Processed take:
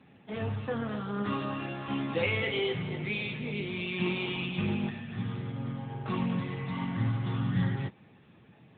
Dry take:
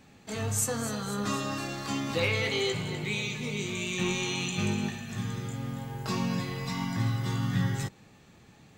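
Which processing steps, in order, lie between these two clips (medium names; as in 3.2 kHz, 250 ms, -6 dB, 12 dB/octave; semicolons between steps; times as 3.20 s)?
AMR-NB 10.2 kbps 8 kHz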